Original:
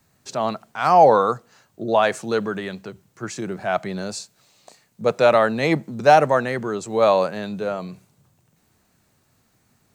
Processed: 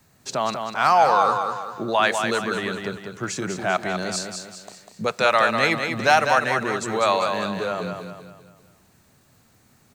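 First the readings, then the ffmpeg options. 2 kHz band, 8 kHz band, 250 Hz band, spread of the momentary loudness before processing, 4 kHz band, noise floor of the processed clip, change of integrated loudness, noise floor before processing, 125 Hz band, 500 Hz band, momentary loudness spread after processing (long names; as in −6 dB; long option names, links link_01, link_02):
+4.5 dB, +5.0 dB, −2.5 dB, 17 LU, +5.0 dB, −59 dBFS, −2.0 dB, −65 dBFS, −3.0 dB, −5.0 dB, 14 LU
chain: -filter_complex "[0:a]acrossover=split=970[link_01][link_02];[link_01]acompressor=threshold=-30dB:ratio=6[link_03];[link_03][link_02]amix=inputs=2:normalize=0,aecho=1:1:197|394|591|788|985:0.501|0.216|0.0927|0.0398|0.0171,volume=4dB"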